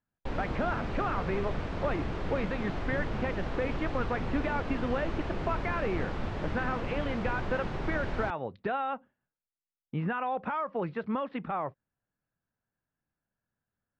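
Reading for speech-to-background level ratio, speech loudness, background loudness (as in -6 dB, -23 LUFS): 1.5 dB, -34.5 LUFS, -36.0 LUFS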